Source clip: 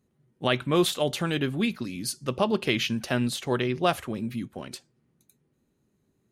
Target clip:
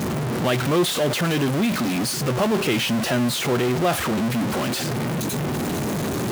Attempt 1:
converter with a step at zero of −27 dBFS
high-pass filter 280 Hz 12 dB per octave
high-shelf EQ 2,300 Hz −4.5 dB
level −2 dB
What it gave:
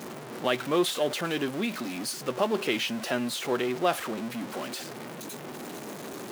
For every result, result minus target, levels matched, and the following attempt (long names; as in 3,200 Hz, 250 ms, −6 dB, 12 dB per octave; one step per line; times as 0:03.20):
125 Hz band −10.0 dB; converter with a step at zero: distortion −7 dB
converter with a step at zero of −27 dBFS
high-pass filter 89 Hz 12 dB per octave
high-shelf EQ 2,300 Hz −4.5 dB
level −2 dB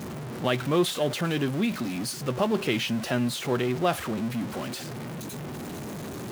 converter with a step at zero: distortion −7 dB
converter with a step at zero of −15.5 dBFS
high-pass filter 89 Hz 12 dB per octave
high-shelf EQ 2,300 Hz −4.5 dB
level −2 dB